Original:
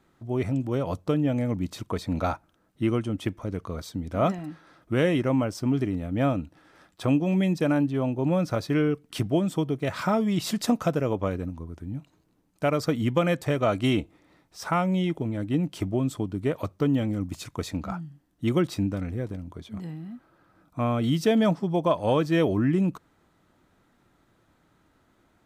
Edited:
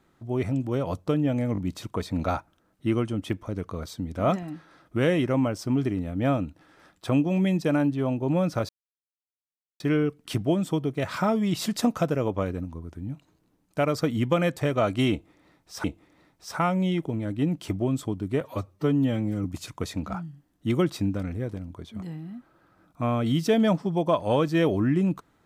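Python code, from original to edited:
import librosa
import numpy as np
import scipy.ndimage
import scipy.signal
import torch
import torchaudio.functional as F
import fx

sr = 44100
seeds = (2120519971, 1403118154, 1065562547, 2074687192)

y = fx.edit(x, sr, fx.stutter(start_s=1.53, slice_s=0.02, count=3),
    fx.insert_silence(at_s=8.65, length_s=1.11),
    fx.repeat(start_s=13.96, length_s=0.73, count=2),
    fx.stretch_span(start_s=16.53, length_s=0.69, factor=1.5), tone=tone)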